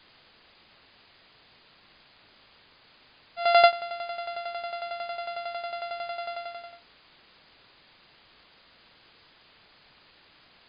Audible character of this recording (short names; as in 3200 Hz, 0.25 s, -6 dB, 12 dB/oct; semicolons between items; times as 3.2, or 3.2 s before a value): a buzz of ramps at a fixed pitch in blocks of 64 samples; tremolo saw down 11 Hz, depth 75%; a quantiser's noise floor 10-bit, dither triangular; MP3